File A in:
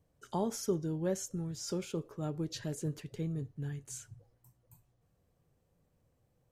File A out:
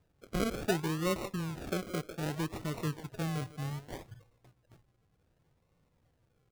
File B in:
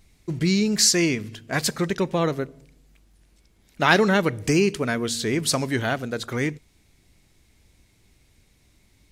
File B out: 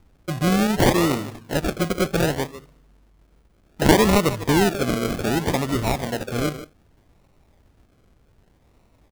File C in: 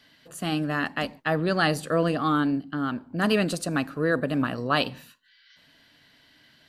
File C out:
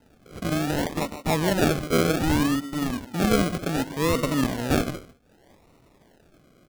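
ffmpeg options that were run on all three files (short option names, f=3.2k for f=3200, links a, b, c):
-filter_complex "[0:a]asplit=2[a][b];[b]adelay=150,highpass=300,lowpass=3.4k,asoftclip=type=hard:threshold=-9.5dB,volume=-11dB[c];[a][c]amix=inputs=2:normalize=0,acrusher=samples=38:mix=1:aa=0.000001:lfo=1:lforange=22.8:lforate=0.65,volume=1.5dB"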